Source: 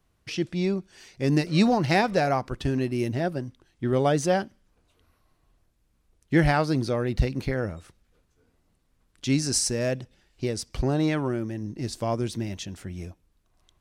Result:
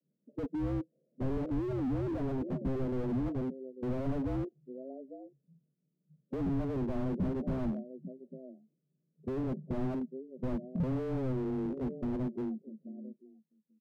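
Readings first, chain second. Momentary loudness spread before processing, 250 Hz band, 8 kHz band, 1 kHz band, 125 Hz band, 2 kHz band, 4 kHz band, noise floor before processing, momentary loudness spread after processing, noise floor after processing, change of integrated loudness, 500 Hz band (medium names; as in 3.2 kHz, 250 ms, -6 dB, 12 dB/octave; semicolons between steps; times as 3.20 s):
13 LU, -6.5 dB, under -35 dB, -17.0 dB, -9.0 dB, -22.0 dB, under -25 dB, -69 dBFS, 14 LU, -81 dBFS, -9.5 dB, -10.5 dB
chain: fade out at the end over 2.51 s; spectral noise reduction 18 dB; steep low-pass 520 Hz 72 dB/octave; in parallel at +0.5 dB: peak limiter -19.5 dBFS, peak gain reduction 8.5 dB; on the sum: frequency shift +130 Hz; rotary cabinet horn 6.3 Hz, later 1.2 Hz, at 10.43 s; on a send: delay 844 ms -23.5 dB; on the sum: slew-rate limiter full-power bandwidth 7.6 Hz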